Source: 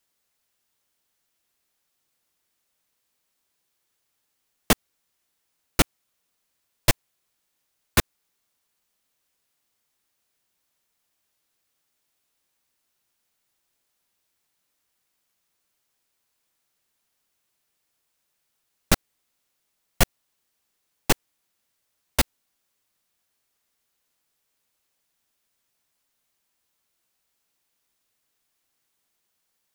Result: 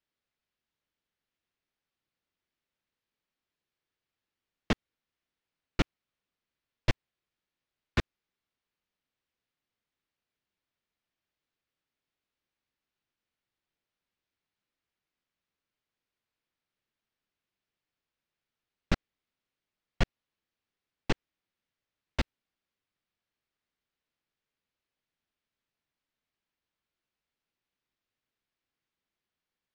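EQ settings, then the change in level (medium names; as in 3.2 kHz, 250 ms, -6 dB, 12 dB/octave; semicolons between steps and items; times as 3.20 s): distance through air 180 m; peaking EQ 830 Hz -5 dB 1.7 oct; treble shelf 6.3 kHz -5.5 dB; -5.0 dB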